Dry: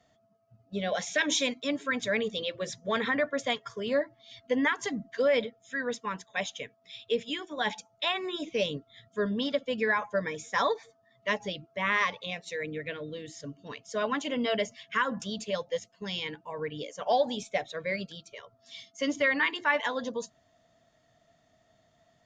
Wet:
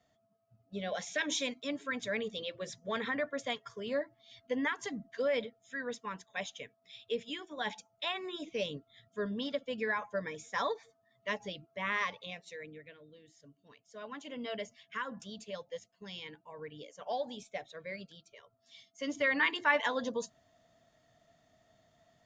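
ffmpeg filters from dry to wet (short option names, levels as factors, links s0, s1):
-af "volume=3.16,afade=t=out:st=12.16:d=0.78:silence=0.266073,afade=t=in:st=13.9:d=0.61:silence=0.421697,afade=t=in:st=18.94:d=0.54:silence=0.354813"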